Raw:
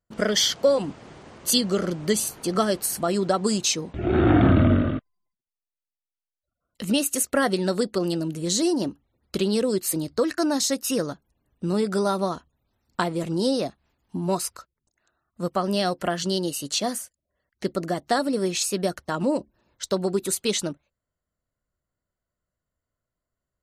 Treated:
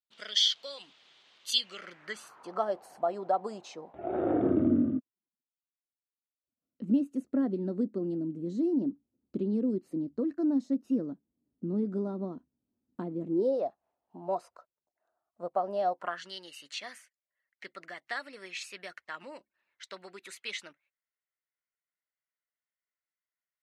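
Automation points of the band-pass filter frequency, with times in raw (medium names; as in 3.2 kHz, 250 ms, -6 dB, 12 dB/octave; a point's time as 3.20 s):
band-pass filter, Q 3.2
1.51 s 3.5 kHz
2.68 s 750 Hz
4.00 s 750 Hz
4.84 s 260 Hz
13.24 s 260 Hz
13.65 s 690 Hz
15.90 s 690 Hz
16.30 s 2.1 kHz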